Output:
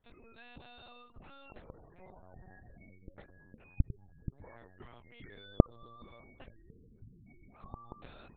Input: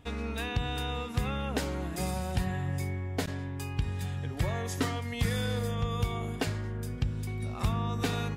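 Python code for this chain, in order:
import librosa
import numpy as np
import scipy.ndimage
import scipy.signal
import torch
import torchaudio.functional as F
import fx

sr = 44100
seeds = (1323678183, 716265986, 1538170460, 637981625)

y = fx.spec_gate(x, sr, threshold_db=-20, keep='strong')
y = fx.low_shelf(y, sr, hz=410.0, db=-8.0)
y = fx.lpc_vocoder(y, sr, seeds[0], excitation='pitch_kept', order=8)
y = y * 10.0 ** (-16.5 / 20.0)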